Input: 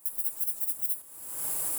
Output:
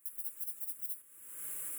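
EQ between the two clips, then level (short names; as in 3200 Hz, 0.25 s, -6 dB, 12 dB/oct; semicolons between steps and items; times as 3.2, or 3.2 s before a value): low shelf 370 Hz -9.5 dB; high shelf 8800 Hz -5 dB; fixed phaser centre 2000 Hz, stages 4; -5.0 dB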